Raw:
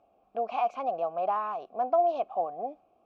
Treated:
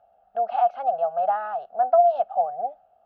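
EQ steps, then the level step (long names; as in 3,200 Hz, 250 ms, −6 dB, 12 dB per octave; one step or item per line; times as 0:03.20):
low-shelf EQ 200 Hz +5 dB
flat-topped bell 1,300 Hz +11 dB 2.3 octaves
phaser with its sweep stopped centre 1,600 Hz, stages 8
−2.5 dB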